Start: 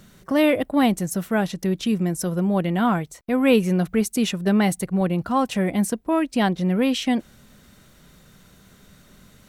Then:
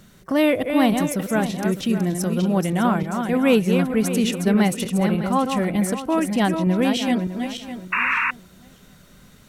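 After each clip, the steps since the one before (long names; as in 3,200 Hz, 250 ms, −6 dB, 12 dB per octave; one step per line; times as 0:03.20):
feedback delay that plays each chunk backwards 303 ms, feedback 48%, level −6 dB
sound drawn into the spectrogram noise, 0:07.92–0:08.31, 910–2,800 Hz −21 dBFS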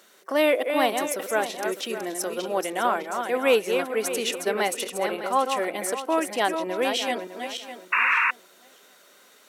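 high-pass filter 380 Hz 24 dB per octave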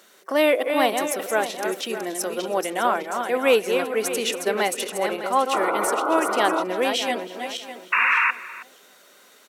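sound drawn into the spectrogram noise, 0:05.53–0:06.63, 290–1,500 Hz −27 dBFS
slap from a distant wall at 55 metres, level −17 dB
level +2 dB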